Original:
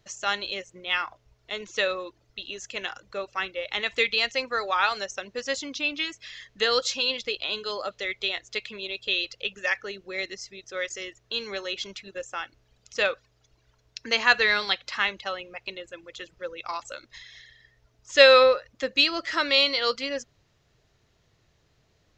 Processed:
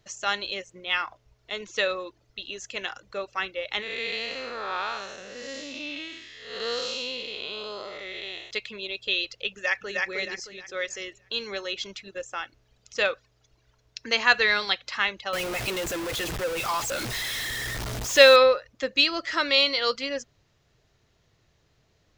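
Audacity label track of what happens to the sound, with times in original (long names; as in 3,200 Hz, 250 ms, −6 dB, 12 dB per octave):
3.820000	8.510000	spectrum smeared in time width 265 ms
9.500000	10.080000	delay throw 310 ms, feedback 35%, level −2 dB
15.330000	18.360000	converter with a step at zero of −26 dBFS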